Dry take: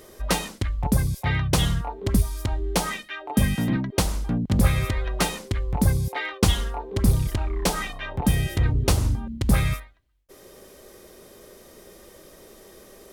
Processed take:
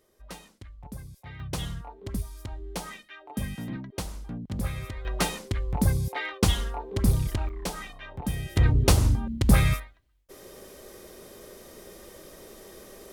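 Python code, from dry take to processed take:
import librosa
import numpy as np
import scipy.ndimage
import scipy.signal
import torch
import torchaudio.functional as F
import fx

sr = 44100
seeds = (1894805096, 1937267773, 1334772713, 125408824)

y = fx.gain(x, sr, db=fx.steps((0.0, -19.5), (1.4, -11.5), (5.05, -3.0), (7.49, -9.5), (8.56, 1.0)))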